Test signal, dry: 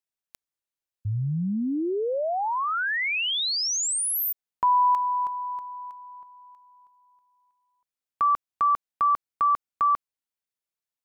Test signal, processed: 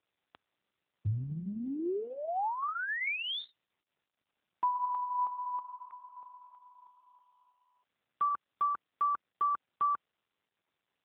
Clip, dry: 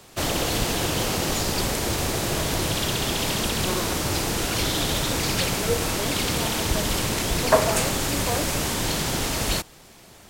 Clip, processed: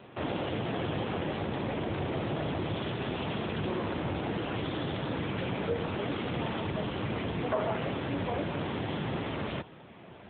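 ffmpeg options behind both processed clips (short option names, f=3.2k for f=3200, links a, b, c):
-af "acompressor=threshold=-29dB:ratio=3:attack=0.67:release=80:knee=1:detection=peak,aemphasis=mode=reproduction:type=75kf,volume=3dB" -ar 8000 -c:a libopencore_amrnb -b:a 7950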